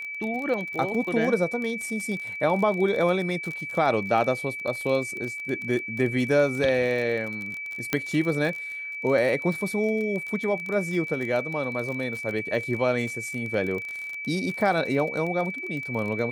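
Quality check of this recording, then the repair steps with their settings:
crackle 33 per s -30 dBFS
whine 2.3 kHz -32 dBFS
7.93 s: pop -8 dBFS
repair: de-click; band-stop 2.3 kHz, Q 30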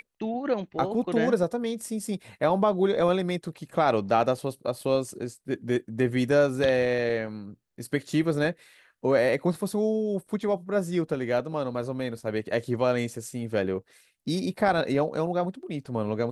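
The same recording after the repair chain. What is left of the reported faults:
nothing left

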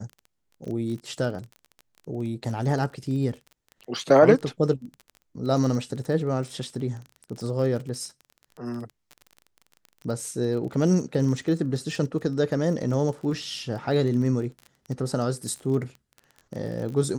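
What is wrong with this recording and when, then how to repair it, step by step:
crackle 26 per s -33 dBFS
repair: de-click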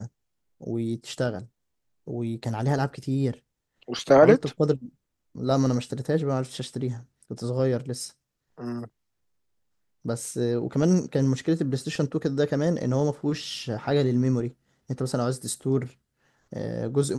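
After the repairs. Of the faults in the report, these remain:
nothing left

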